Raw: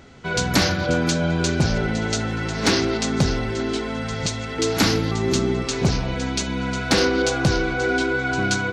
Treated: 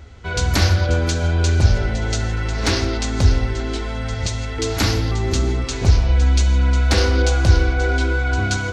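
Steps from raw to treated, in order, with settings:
low shelf with overshoot 110 Hz +10 dB, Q 3
reverb whose tail is shaped and stops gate 190 ms flat, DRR 10.5 dB
level −1 dB

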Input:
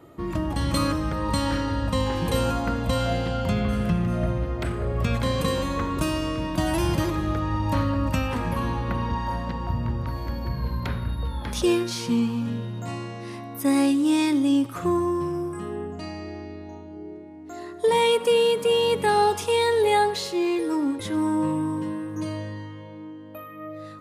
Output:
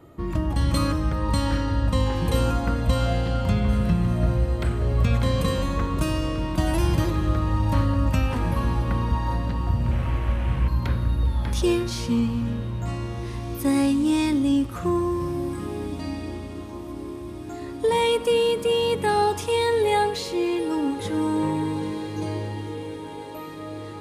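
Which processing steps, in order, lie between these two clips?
0:09.91–0:10.68: linear delta modulator 16 kbit/s, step −29 dBFS
low-shelf EQ 93 Hz +11 dB
feedback delay with all-pass diffusion 1,894 ms, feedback 59%, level −14 dB
level −1.5 dB

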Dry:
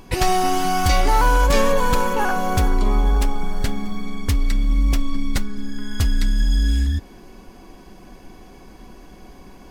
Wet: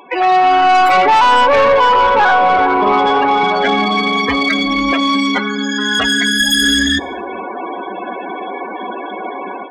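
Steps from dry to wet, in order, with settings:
stylus tracing distortion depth 0.44 ms
high-pass filter 510 Hz 12 dB per octave
notch filter 5,200 Hz, Q 5.8
automatic gain control gain up to 15.5 dB
in parallel at −4.5 dB: wave folding −18 dBFS
on the sum: spectral peaks only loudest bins 32
soft clipping −14 dBFS, distortion −13 dB
on a send at −22 dB: convolution reverb RT60 0.90 s, pre-delay 68 ms
on the sum: level +8 dB

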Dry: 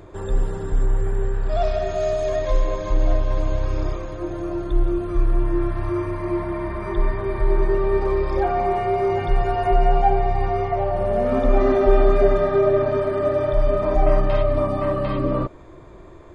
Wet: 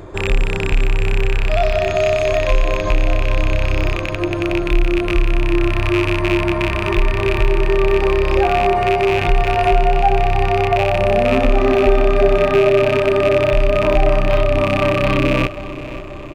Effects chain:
loose part that buzzes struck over −27 dBFS, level −15 dBFS
downward compressor 2 to 1, threshold −21 dBFS, peak gain reduction 6.5 dB
on a send: repeating echo 533 ms, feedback 59%, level −15 dB
on the sum: level +8 dB

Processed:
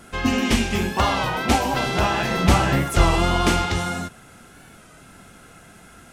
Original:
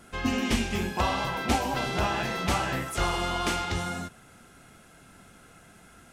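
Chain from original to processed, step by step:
0:02.31–0:03.67: low-shelf EQ 370 Hz +7.5 dB
floating-point word with a short mantissa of 8 bits
wow of a warped record 33 1/3 rpm, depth 100 cents
level +6.5 dB

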